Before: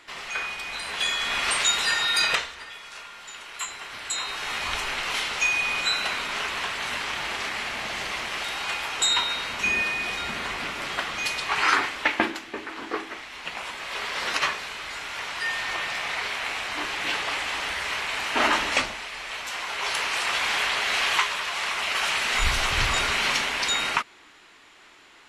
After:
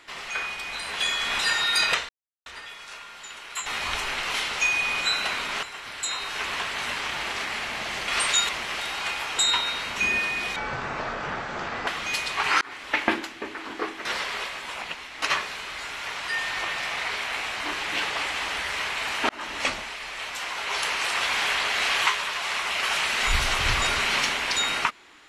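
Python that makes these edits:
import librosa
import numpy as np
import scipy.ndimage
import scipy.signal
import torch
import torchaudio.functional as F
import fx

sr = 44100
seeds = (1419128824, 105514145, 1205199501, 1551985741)

y = fx.edit(x, sr, fx.move(start_s=1.39, length_s=0.41, to_s=8.12),
    fx.insert_silence(at_s=2.5, length_s=0.37),
    fx.move(start_s=3.7, length_s=0.76, to_s=6.43),
    fx.speed_span(start_s=10.19, length_s=0.8, speed=0.61),
    fx.fade_in_span(start_s=11.73, length_s=0.41),
    fx.reverse_span(start_s=13.17, length_s=1.17),
    fx.fade_in_span(start_s=18.41, length_s=0.51), tone=tone)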